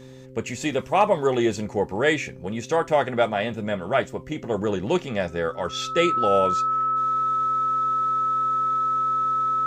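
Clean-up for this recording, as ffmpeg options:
ffmpeg -i in.wav -af "bandreject=frequency=130.3:width_type=h:width=4,bandreject=frequency=260.6:width_type=h:width=4,bandreject=frequency=390.9:width_type=h:width=4,bandreject=frequency=521.2:width_type=h:width=4,bandreject=frequency=1300:width=30" out.wav

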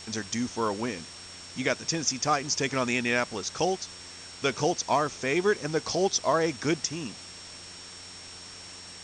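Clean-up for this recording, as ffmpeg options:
ffmpeg -i in.wav -af "bandreject=frequency=90.1:width_type=h:width=4,bandreject=frequency=180.2:width_type=h:width=4,bandreject=frequency=270.3:width_type=h:width=4,bandreject=frequency=360.4:width_type=h:width=4,bandreject=frequency=450.5:width_type=h:width=4,bandreject=frequency=5500:width=30,afftdn=noise_reduction=29:noise_floor=-45" out.wav

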